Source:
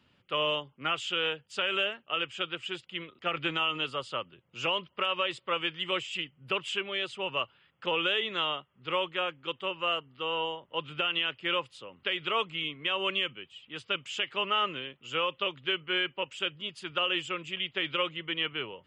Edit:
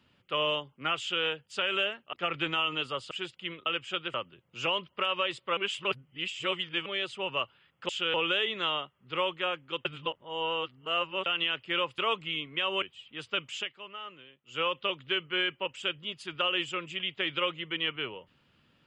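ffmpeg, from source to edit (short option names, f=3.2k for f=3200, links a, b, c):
-filter_complex "[0:a]asplit=15[a][b][c][d][e][f][g][h][i][j][k][l][m][n][o];[a]atrim=end=2.132[p];[b]atrim=start=3.158:end=4.142[q];[c]atrim=start=2.608:end=3.162[r];[d]atrim=start=2.128:end=2.612[s];[e]atrim=start=4.138:end=5.572[t];[f]atrim=start=5.568:end=6.862,asetpts=PTS-STARTPTS,areverse[u];[g]atrim=start=6.858:end=7.892[v];[h]atrim=start=0.998:end=1.252[w];[i]atrim=start=7.888:end=9.602[x];[j]atrim=start=9.598:end=11.012,asetpts=PTS-STARTPTS,areverse[y];[k]atrim=start=11.008:end=11.732[z];[l]atrim=start=12.258:end=13.102[aa];[m]atrim=start=13.388:end=14.31,asetpts=PTS-STARTPTS,afade=t=out:st=0.742:d=0.18:silence=0.188365[ab];[n]atrim=start=14.31:end=15.01,asetpts=PTS-STARTPTS,volume=-14.5dB[ac];[o]atrim=start=15.01,asetpts=PTS-STARTPTS,afade=t=in:d=0.18:silence=0.188365[ad];[p][q]acrossfade=d=0.004:c1=hsin:c2=hsin[ae];[ae][r]acrossfade=d=0.004:c1=hsin:c2=hsin[af];[af][s]acrossfade=d=0.004:c1=hsin:c2=hsin[ag];[ag][t]acrossfade=d=0.004:c1=hsin:c2=hsin[ah];[ah][u]acrossfade=d=0.004:c1=hsin:c2=hsin[ai];[ai][v]acrossfade=d=0.004:c1=hsin:c2=hsin[aj];[aj][w]acrossfade=d=0.004:c1=hsin:c2=hsin[ak];[ak][x]acrossfade=d=0.004:c1=hsin:c2=hsin[al];[al][y]acrossfade=d=0.004:c1=hsin:c2=hsin[am];[am][z]acrossfade=d=0.004:c1=hsin:c2=hsin[an];[an][aa]acrossfade=d=0.004:c1=hsin:c2=hsin[ao];[ab][ac][ad]concat=n=3:v=0:a=1[ap];[ao][ap]acrossfade=d=0.004:c1=hsin:c2=hsin"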